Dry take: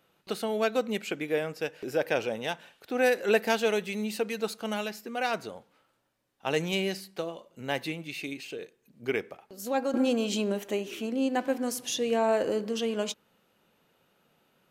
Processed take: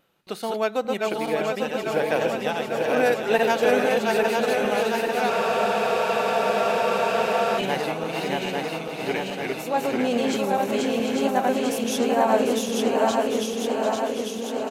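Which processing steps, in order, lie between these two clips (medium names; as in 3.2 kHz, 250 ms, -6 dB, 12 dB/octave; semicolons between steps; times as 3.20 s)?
backward echo that repeats 423 ms, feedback 82%, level -2 dB; dynamic bell 880 Hz, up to +7 dB, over -41 dBFS, Q 1.5; reverse; upward compressor, threshold -42 dBFS; reverse; wow and flutter 41 cents; feedback delay 745 ms, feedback 46%, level -8.5 dB; spectral freeze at 5.31 s, 2.28 s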